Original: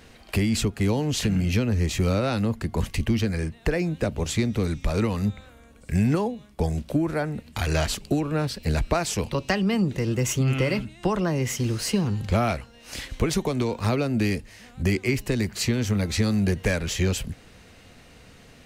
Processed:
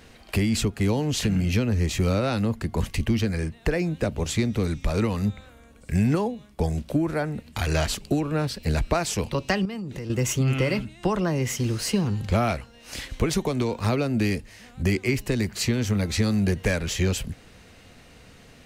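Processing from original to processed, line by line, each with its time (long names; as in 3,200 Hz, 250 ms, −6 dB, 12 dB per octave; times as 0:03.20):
0:09.65–0:10.10: downward compressor 12 to 1, threshold −29 dBFS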